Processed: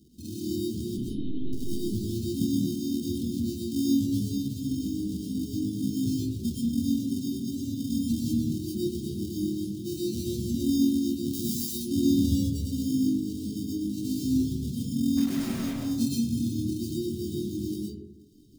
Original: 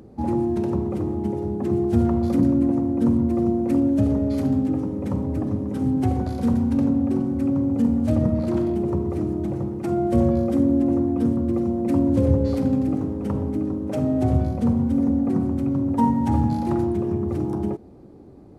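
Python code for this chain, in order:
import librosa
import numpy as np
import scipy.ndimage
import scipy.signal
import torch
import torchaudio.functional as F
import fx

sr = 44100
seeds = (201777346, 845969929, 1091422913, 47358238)

y = fx.chorus_voices(x, sr, voices=2, hz=0.62, base_ms=15, depth_ms=5.0, mix_pct=55)
y = fx.sample_hold(y, sr, seeds[0], rate_hz=1700.0, jitter_pct=0)
y = fx.lpc_monotone(y, sr, seeds[1], pitch_hz=130.0, order=16, at=(0.97, 1.53))
y = scipy.signal.sosfilt(scipy.signal.cheby2(4, 50, [650.0, 2000.0], 'bandstop', fs=sr, output='sos'), y)
y = fx.tilt_eq(y, sr, slope=4.5, at=(11.33, 11.73), fade=0.02)
y = fx.dereverb_blind(y, sr, rt60_s=1.1)
y = fx.low_shelf(y, sr, hz=110.0, db=-5.0)
y = fx.quant_dither(y, sr, seeds[2], bits=6, dither='none', at=(15.17, 15.73))
y = fx.rev_freeverb(y, sr, rt60_s=0.95, hf_ratio=0.4, predelay_ms=80, drr_db=-5.0)
y = F.gain(torch.from_numpy(y), -6.0).numpy()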